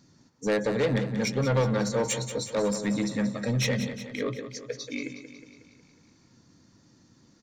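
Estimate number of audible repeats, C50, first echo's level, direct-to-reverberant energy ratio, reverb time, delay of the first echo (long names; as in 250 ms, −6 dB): 6, no reverb audible, −10.5 dB, no reverb audible, no reverb audible, 182 ms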